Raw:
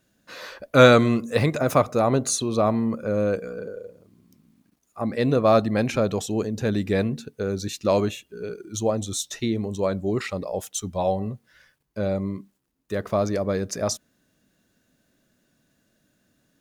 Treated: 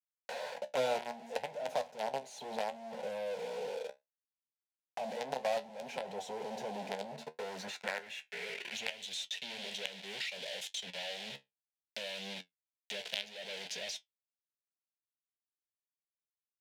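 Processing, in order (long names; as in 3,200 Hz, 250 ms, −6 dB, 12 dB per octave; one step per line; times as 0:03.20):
log-companded quantiser 2 bits
band-pass filter sweep 880 Hz → 3,400 Hz, 0:07.10–0:09.14
in parallel at 0 dB: downward compressor, threshold −36 dBFS, peak gain reduction 23 dB
on the sum: flanger 0.65 Hz, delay 10 ms, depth 5.7 ms, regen +54%
phaser with its sweep stopped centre 320 Hz, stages 6
multiband upward and downward compressor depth 70%
level −3.5 dB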